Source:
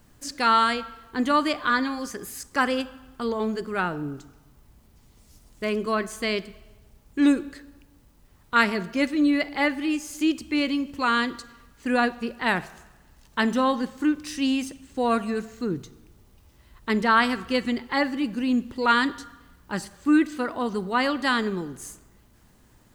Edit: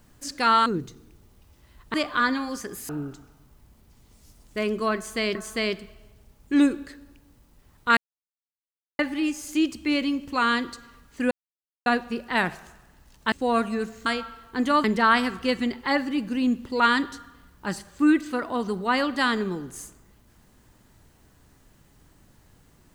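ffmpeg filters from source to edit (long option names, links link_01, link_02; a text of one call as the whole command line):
ffmpeg -i in.wav -filter_complex "[0:a]asplit=11[link_01][link_02][link_03][link_04][link_05][link_06][link_07][link_08][link_09][link_10][link_11];[link_01]atrim=end=0.662[link_12];[link_02]atrim=start=15.618:end=16.902[link_13];[link_03]atrim=start=1.438:end=2.392[link_14];[link_04]atrim=start=3.948:end=6.412[link_15];[link_05]atrim=start=6.008:end=8.63,asetpts=PTS-STARTPTS,afade=type=out:start_time=2.618:duration=0.004:curve=hsin[link_16];[link_06]atrim=start=8.63:end=9.65,asetpts=PTS-STARTPTS,volume=0[link_17];[link_07]atrim=start=9.65:end=11.97,asetpts=PTS-STARTPTS,afade=type=in:duration=0.004:curve=hsin,afade=type=out:start_time=2.316:duration=0.004:curve=hsin,apad=pad_dur=0.55[link_18];[link_08]atrim=start=11.97:end=13.432,asetpts=PTS-STARTPTS,afade=type=in:duration=0.004:curve=hsin[link_19];[link_09]atrim=start=14.878:end=15.622[link_20];[link_10]atrim=start=0.658:end=1.442[link_21];[link_11]atrim=start=16.898[link_22];[link_12][link_13]acrossfade=duration=0.004:curve1=hsin:curve2=hsin[link_23];[link_23][link_14]acrossfade=duration=0.004:curve1=hsin:curve2=hsin[link_24];[link_24][link_15]acrossfade=duration=0.004:curve1=hsin:curve2=hsin[link_25];[link_16][link_17][link_18][link_19]concat=n=4:v=0:a=1[link_26];[link_25][link_26]acrossfade=duration=0.004:curve1=hsin:curve2=hsin[link_27];[link_27][link_20]acrossfade=duration=0.004:curve1=hsin:curve2=hsin[link_28];[link_28][link_21]acrossfade=duration=0.004:curve1=hsin:curve2=hsin[link_29];[link_29][link_22]acrossfade=duration=0.004:curve1=hsin:curve2=hsin" out.wav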